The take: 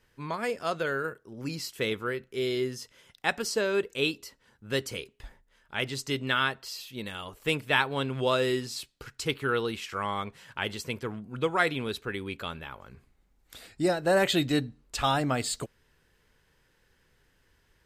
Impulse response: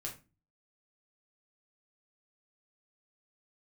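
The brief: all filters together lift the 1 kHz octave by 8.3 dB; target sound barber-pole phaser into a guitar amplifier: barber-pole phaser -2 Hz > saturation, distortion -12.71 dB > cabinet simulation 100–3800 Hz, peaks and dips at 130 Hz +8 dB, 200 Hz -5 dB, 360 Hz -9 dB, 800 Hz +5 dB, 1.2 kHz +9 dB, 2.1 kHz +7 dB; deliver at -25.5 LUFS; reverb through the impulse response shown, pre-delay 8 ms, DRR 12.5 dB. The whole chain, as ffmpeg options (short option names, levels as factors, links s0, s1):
-filter_complex "[0:a]equalizer=f=1000:t=o:g=3,asplit=2[s0][s1];[1:a]atrim=start_sample=2205,adelay=8[s2];[s1][s2]afir=irnorm=-1:irlink=0,volume=0.282[s3];[s0][s3]amix=inputs=2:normalize=0,asplit=2[s4][s5];[s5]afreqshift=-2[s6];[s4][s6]amix=inputs=2:normalize=1,asoftclip=threshold=0.0631,highpass=100,equalizer=f=130:t=q:w=4:g=8,equalizer=f=200:t=q:w=4:g=-5,equalizer=f=360:t=q:w=4:g=-9,equalizer=f=800:t=q:w=4:g=5,equalizer=f=1200:t=q:w=4:g=9,equalizer=f=2100:t=q:w=4:g=7,lowpass=f=3800:w=0.5412,lowpass=f=3800:w=1.3066,volume=2.11"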